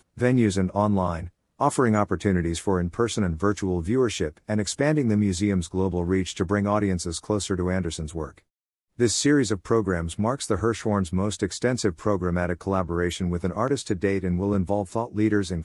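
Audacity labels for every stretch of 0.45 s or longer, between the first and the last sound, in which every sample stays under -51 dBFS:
8.400000	8.980000	silence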